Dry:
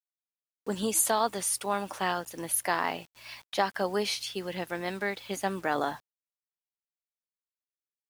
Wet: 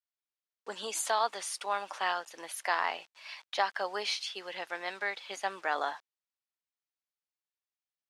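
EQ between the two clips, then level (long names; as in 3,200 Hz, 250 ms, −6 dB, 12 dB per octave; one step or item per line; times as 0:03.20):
band-pass filter 700–5,800 Hz
0.0 dB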